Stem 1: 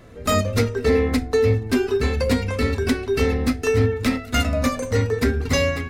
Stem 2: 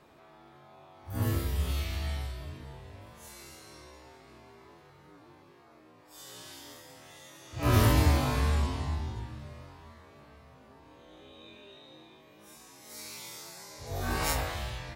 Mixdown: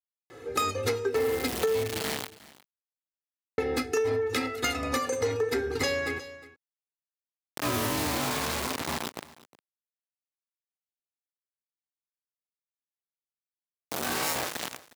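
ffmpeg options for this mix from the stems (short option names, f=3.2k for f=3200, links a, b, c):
-filter_complex "[0:a]aecho=1:1:2.4:0.88,asoftclip=type=tanh:threshold=-9dB,adelay=300,volume=-0.5dB,asplit=3[a][b][c];[a]atrim=end=2.01,asetpts=PTS-STARTPTS,afade=t=out:st=2.006:d=0.004:c=hsin[d];[b]atrim=start=2.01:end=3.58,asetpts=PTS-STARTPTS,volume=0[e];[c]atrim=start=3.58,asetpts=PTS-STARTPTS,afade=t=in:d=0.004:c=hsin[f];[d][e][f]concat=n=3:v=0:a=1,asplit=2[g][h];[h]volume=-22dB[i];[1:a]acrusher=bits=4:mix=0:aa=0.000001,volume=2.5dB,asplit=2[j][k];[k]volume=-21.5dB[l];[i][l]amix=inputs=2:normalize=0,aecho=0:1:360:1[m];[g][j][m]amix=inputs=3:normalize=0,highpass=200,acompressor=threshold=-25dB:ratio=5"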